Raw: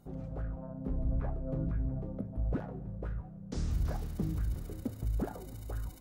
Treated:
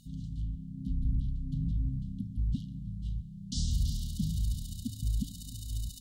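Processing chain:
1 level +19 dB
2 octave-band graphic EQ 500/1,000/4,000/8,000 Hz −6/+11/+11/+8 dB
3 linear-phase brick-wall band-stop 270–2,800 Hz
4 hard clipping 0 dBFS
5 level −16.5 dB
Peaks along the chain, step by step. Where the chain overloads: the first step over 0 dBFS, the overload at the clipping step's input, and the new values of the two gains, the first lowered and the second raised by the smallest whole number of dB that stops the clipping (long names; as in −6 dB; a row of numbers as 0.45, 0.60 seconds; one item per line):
−4.5, −3.0, −3.5, −3.5, −20.0 dBFS
no step passes full scale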